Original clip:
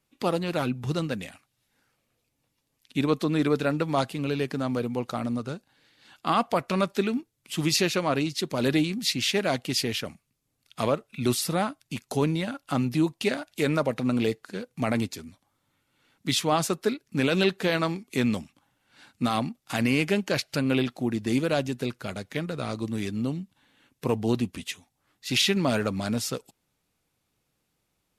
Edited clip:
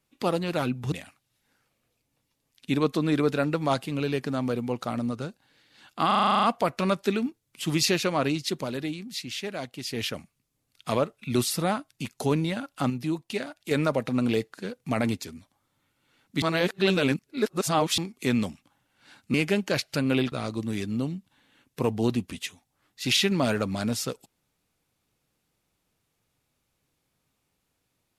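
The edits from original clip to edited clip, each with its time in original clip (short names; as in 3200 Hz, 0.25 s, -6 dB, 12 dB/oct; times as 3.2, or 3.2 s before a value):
0.92–1.19 cut
6.34 stutter 0.04 s, 10 plays
8.5–9.93 dip -8.5 dB, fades 0.13 s
12.81–13.62 gain -5 dB
16.33–17.89 reverse
19.25–19.94 cut
20.92–22.57 cut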